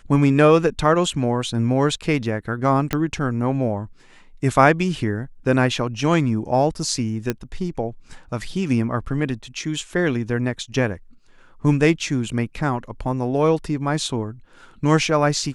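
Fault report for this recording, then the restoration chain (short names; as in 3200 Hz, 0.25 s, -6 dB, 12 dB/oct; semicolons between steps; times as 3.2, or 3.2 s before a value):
2.93 pop -7 dBFS
7.3 pop -8 dBFS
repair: de-click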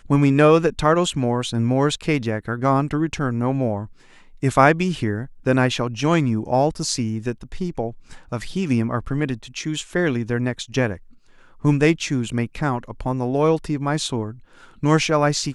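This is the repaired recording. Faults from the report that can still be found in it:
none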